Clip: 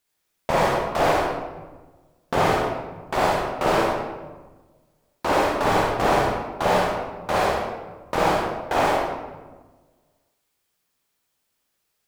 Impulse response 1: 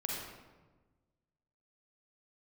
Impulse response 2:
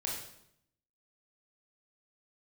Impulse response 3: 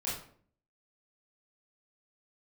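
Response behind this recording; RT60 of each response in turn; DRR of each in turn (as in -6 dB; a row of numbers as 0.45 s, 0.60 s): 1; 1.3 s, 0.75 s, 0.55 s; -3.0 dB, -3.5 dB, -8.0 dB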